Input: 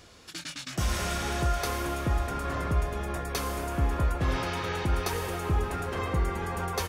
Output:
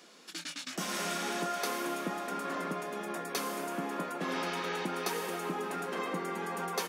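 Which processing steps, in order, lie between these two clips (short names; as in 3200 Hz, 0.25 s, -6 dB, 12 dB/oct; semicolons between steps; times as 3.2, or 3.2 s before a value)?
Chebyshev high-pass 180 Hz, order 5; gain -2 dB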